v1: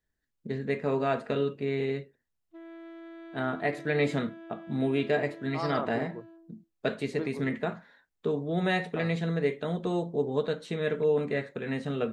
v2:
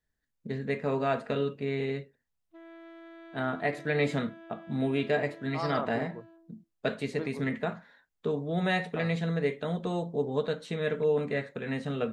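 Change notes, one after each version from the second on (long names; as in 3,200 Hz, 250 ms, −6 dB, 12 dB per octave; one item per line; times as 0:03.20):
master: add parametric band 350 Hz −5.5 dB 0.35 octaves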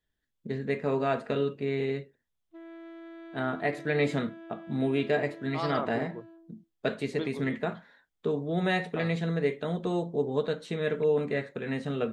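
second voice: add low-pass with resonance 3,400 Hz, resonance Q 9.5
master: add parametric band 350 Hz +5.5 dB 0.35 octaves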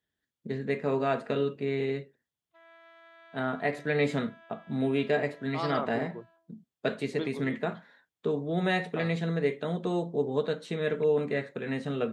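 background: add high-pass filter 710 Hz 24 dB per octave
master: add high-pass filter 97 Hz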